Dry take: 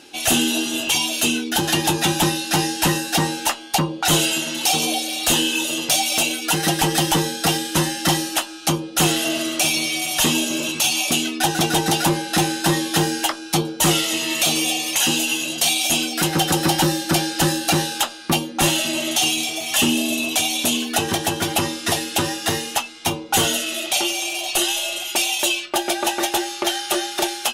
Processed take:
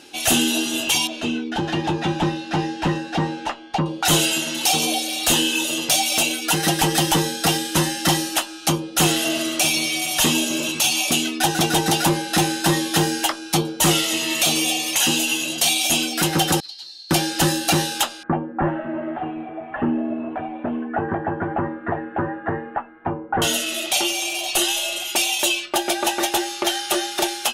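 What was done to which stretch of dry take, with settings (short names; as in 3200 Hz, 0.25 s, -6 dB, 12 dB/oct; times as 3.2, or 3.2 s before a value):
1.07–3.86 tape spacing loss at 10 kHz 27 dB
16.6–17.11 band-pass 4300 Hz, Q 16
18.23–23.42 elliptic low-pass 1700 Hz, stop band 70 dB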